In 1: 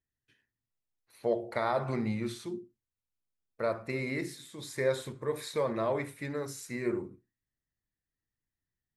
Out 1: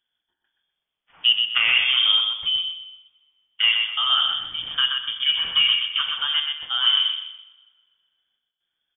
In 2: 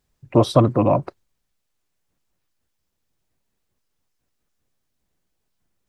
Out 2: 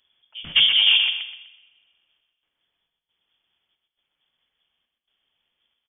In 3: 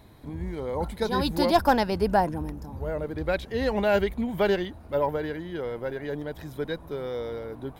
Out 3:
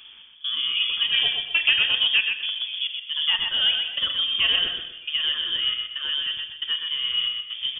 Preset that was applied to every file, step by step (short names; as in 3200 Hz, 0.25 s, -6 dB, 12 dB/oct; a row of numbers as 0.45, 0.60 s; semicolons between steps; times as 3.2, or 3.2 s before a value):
tracing distortion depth 0.036 ms; HPF 44 Hz; bell 360 Hz +3 dB 1.7 oct; in parallel at +2.5 dB: compressor, threshold -29 dBFS; on the sum: step gate "x.xxxx.xxx.xx.xx" 68 bpm -24 dB; soft clip -7 dBFS; on a send: feedback echo 0.125 s, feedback 33%, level -5 dB; on the sum: two-slope reverb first 0.69 s, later 1.9 s, from -18 dB, DRR 8 dB; inverted band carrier 3400 Hz; normalise peaks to -6 dBFS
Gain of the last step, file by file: +4.0, -3.5, -3.0 dB